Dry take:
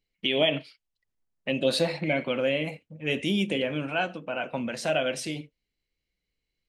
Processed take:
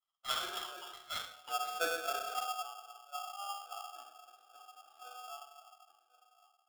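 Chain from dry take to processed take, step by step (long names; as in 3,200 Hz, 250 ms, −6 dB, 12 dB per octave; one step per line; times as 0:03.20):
delay that swaps between a low-pass and a high-pass 344 ms, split 1,800 Hz, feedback 66%, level −11.5 dB
automatic gain control gain up to 10.5 dB
formant filter i
LFO wah 3.7 Hz 550–2,800 Hz, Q 3.7
0:04.01–0:04.97: low-shelf EQ 270 Hz −9.5 dB
low-pass filter sweep 2,200 Hz → 180 Hz, 0:01.20–0:02.59
convolution reverb RT60 0.75 s, pre-delay 3 ms, DRR −1.5 dB
0:01.73–0:02.46: floating-point word with a short mantissa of 2 bits
ring modulator with a square carrier 1,000 Hz
level +1.5 dB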